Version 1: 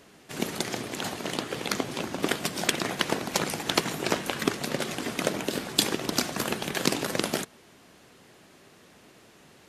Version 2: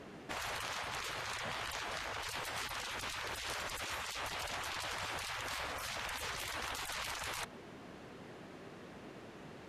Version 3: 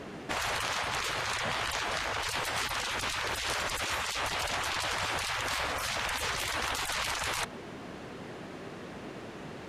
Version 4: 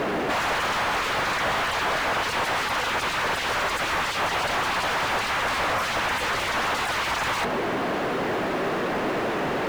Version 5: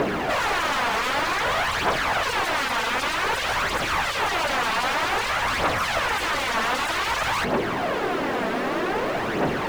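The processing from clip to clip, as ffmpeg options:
-af "afftfilt=real='re*lt(hypot(re,im),0.0316)':imag='im*lt(hypot(re,im),0.0316)':win_size=1024:overlap=0.75,lowpass=f=1600:p=1,volume=1.78"
-af "equalizer=f=12000:w=6.4:g=-6,volume=2.66"
-filter_complex "[0:a]asplit=2[s0][s1];[s1]highpass=f=720:p=1,volume=35.5,asoftclip=type=tanh:threshold=0.141[s2];[s0][s2]amix=inputs=2:normalize=0,lowpass=f=1200:p=1,volume=0.501,asplit=2[s3][s4];[s4]acrusher=bits=3:mode=log:mix=0:aa=0.000001,volume=0.398[s5];[s3][s5]amix=inputs=2:normalize=0"
-af "aphaser=in_gain=1:out_gain=1:delay=4.6:decay=0.48:speed=0.53:type=triangular"

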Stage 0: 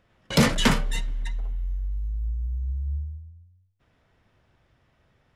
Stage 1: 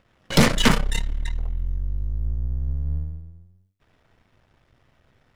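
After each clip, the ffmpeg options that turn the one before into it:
-af "aeval=exprs='if(lt(val(0),0),0.251*val(0),val(0))':c=same,volume=2"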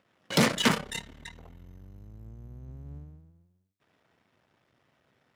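-af "highpass=160,volume=0.562"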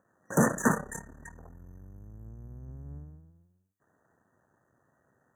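-af "afftfilt=real='re*(1-between(b*sr/4096,1900,5900))':imag='im*(1-between(b*sr/4096,1900,5900))':win_size=4096:overlap=0.75"

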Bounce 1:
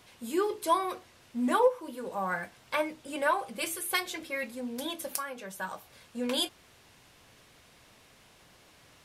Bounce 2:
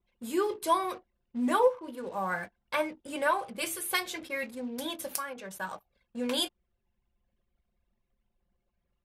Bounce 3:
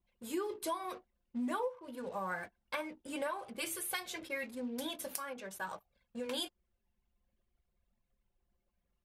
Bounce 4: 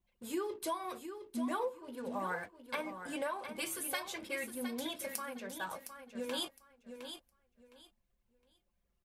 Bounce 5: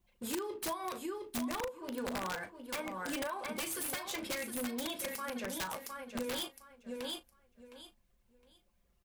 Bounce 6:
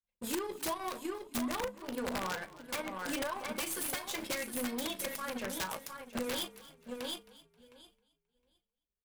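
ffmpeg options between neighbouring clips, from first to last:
-af "anlmdn=0.01"
-af "acompressor=threshold=0.0282:ratio=6,flanger=delay=1.1:depth=3.6:regen=-61:speed=0.5:shape=triangular,volume=1.12"
-af "aecho=1:1:712|1424|2136:0.355|0.0745|0.0156"
-filter_complex "[0:a]acompressor=threshold=0.00891:ratio=8,aeval=exprs='(mod(66.8*val(0)+1,2)-1)/66.8':c=same,asplit=2[s0][s1];[s1]adelay=37,volume=0.224[s2];[s0][s2]amix=inputs=2:normalize=0,volume=2.11"
-filter_complex "[0:a]agate=range=0.0224:threshold=0.001:ratio=3:detection=peak,aeval=exprs='0.0398*(cos(1*acos(clip(val(0)/0.0398,-1,1)))-cos(1*PI/2))+0.00316*(cos(7*acos(clip(val(0)/0.0398,-1,1)))-cos(7*PI/2))+0.000794*(cos(8*acos(clip(val(0)/0.0398,-1,1)))-cos(8*PI/2))':c=same,asplit=4[s0][s1][s2][s3];[s1]adelay=266,afreqshift=-41,volume=0.112[s4];[s2]adelay=532,afreqshift=-82,volume=0.0359[s5];[s3]adelay=798,afreqshift=-123,volume=0.0115[s6];[s0][s4][s5][s6]amix=inputs=4:normalize=0,volume=1.19"

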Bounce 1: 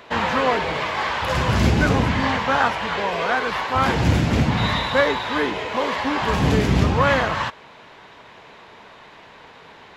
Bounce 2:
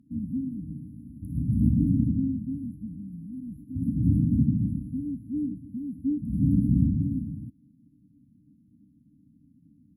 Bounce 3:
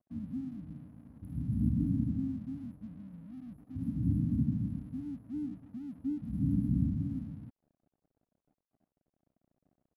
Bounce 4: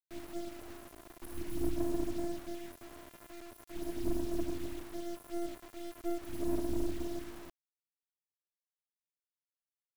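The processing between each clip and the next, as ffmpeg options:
-af "highpass=f=160:p=1,aemphasis=mode=reproduction:type=75fm,afftfilt=real='re*(1-between(b*sr/4096,310,10000))':imag='im*(1-between(b*sr/4096,310,10000))':win_size=4096:overlap=0.75"
-af "aeval=exprs='sgn(val(0))*max(abs(val(0))-0.00178,0)':c=same,volume=0.422"
-af "crystalizer=i=3.5:c=0,afftfilt=real='hypot(re,im)*cos(PI*b)':imag='0':win_size=512:overlap=0.75,acrusher=bits=6:dc=4:mix=0:aa=0.000001,volume=1.78"

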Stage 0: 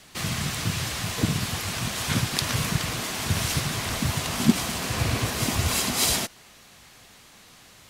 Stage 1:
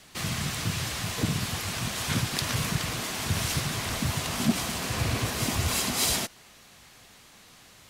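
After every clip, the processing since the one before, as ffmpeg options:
-af "asoftclip=type=tanh:threshold=0.237,volume=0.794"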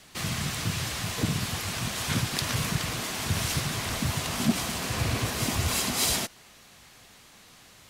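-af anull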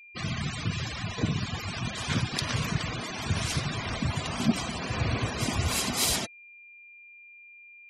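-af "afftfilt=real='re*gte(hypot(re,im),0.0282)':imag='im*gte(hypot(re,im),0.0282)':win_size=1024:overlap=0.75,aeval=exprs='val(0)+0.00398*sin(2*PI*2400*n/s)':c=same"

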